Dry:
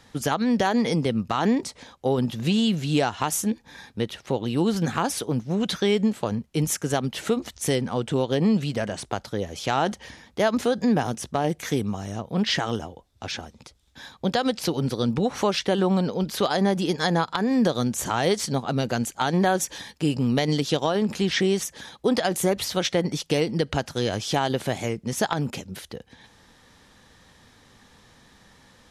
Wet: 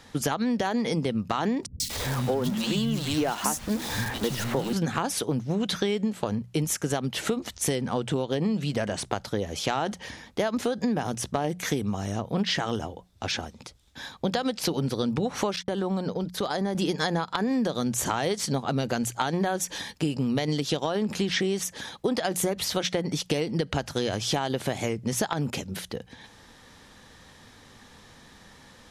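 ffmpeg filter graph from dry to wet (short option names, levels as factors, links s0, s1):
-filter_complex "[0:a]asettb=1/sr,asplit=3[s0][s1][s2];[s0]atrim=end=1.664[s3];[s1]atrim=start=1.66:end=4.73,asetpts=PTS-STARTPTS,afade=t=in:d=0.004:c=qsin,afade=t=out:st=3.066:d=0.004:c=qsin,aeval=exprs='val(0)+0.5*0.0355*sgn(val(0))':c=same,acrossover=split=190|2700[s4][s5][s6];[s6]adelay=140[s7];[s5]adelay=240[s8];[s4][s8][s7]amix=inputs=3:normalize=0,atrim=end_sample=135387[s9];[s2]atrim=start=4.726[s10];[s3][s9]acrossfade=d=0.004:c1=hsin:c2=qsin[s11];[s11][s10]acrossfade=d=0.004:c1=qsin:c2=hsin,asettb=1/sr,asplit=3[s12][s13][s14];[s12]atrim=end=15.564[s15];[s13]atrim=start=15.56:end=16.75,asetpts=PTS-STARTPTS,afade=t=in:d=0.004:c=qsin,afade=t=out:st=1.186:d=0.004:c=qsin,agate=range=0.00282:threshold=0.0251:ratio=16:release=100:detection=peak,equalizer=f=2700:t=o:w=0.45:g=-5,acompressor=threshold=0.0282:ratio=2:attack=3.2:release=140:knee=1:detection=peak[s16];[s14]atrim=start=16.746[s17];[s15][s16]acrossfade=d=0.004:c1=hsin:c2=qsin[s18];[s18][s17]acrossfade=d=0.004:c1=qsin:c2=hsin,bandreject=f=60:t=h:w=6,bandreject=f=120:t=h:w=6,bandreject=f=180:t=h:w=6,acompressor=threshold=0.0501:ratio=6,volume=1.41"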